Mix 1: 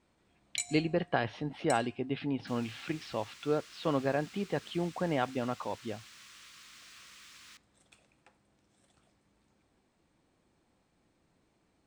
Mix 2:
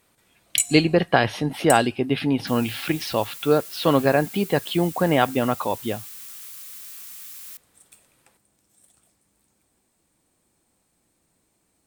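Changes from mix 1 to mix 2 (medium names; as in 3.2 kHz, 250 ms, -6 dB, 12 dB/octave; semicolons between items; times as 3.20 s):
speech +11.5 dB; master: remove distance through air 140 m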